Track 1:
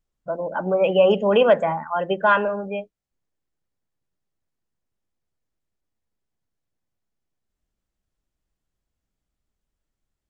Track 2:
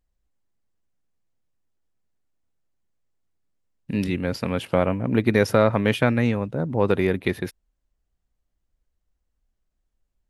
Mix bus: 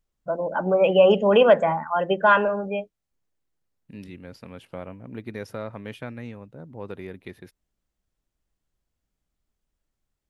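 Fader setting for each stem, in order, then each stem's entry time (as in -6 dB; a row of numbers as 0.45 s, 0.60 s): +0.5 dB, -16.0 dB; 0.00 s, 0.00 s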